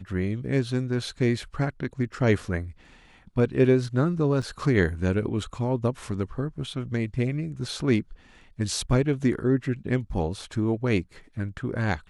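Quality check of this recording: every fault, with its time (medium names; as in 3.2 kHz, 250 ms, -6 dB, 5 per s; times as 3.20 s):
4.42–4.43 s: dropout 5.4 ms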